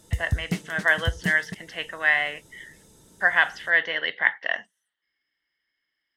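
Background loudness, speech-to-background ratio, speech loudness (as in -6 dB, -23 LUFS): -32.5 LUFS, 9.0 dB, -23.5 LUFS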